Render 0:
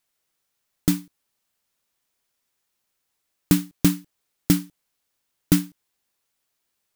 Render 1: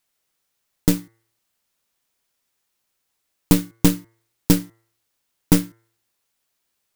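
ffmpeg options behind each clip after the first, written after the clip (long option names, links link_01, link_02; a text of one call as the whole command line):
ffmpeg -i in.wav -af "bandreject=frequency=113.3:width_type=h:width=4,bandreject=frequency=226.6:width_type=h:width=4,bandreject=frequency=339.9:width_type=h:width=4,bandreject=frequency=453.2:width_type=h:width=4,bandreject=frequency=566.5:width_type=h:width=4,bandreject=frequency=679.8:width_type=h:width=4,bandreject=frequency=793.1:width_type=h:width=4,bandreject=frequency=906.4:width_type=h:width=4,bandreject=frequency=1019.7:width_type=h:width=4,bandreject=frequency=1133:width_type=h:width=4,bandreject=frequency=1246.3:width_type=h:width=4,bandreject=frequency=1359.6:width_type=h:width=4,bandreject=frequency=1472.9:width_type=h:width=4,bandreject=frequency=1586.2:width_type=h:width=4,bandreject=frequency=1699.5:width_type=h:width=4,bandreject=frequency=1812.8:width_type=h:width=4,bandreject=frequency=1926.1:width_type=h:width=4,bandreject=frequency=2039.4:width_type=h:width=4,bandreject=frequency=2152.7:width_type=h:width=4,aeval=exprs='0.75*(cos(1*acos(clip(val(0)/0.75,-1,1)))-cos(1*PI/2))+0.0944*(cos(6*acos(clip(val(0)/0.75,-1,1)))-cos(6*PI/2))':channel_layout=same,volume=2dB" out.wav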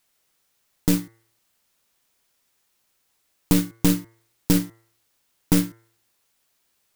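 ffmpeg -i in.wav -af "alimiter=limit=-11.5dB:level=0:latency=1:release=14,volume=5dB" out.wav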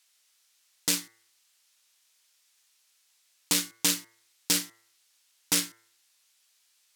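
ffmpeg -i in.wav -af "bandpass=frequency=5300:width_type=q:width=0.6:csg=0,volume=6dB" out.wav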